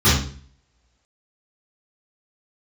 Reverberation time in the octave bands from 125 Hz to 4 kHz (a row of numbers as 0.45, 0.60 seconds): 0.60, 0.55, 0.50, 0.45, 0.45, 0.45 seconds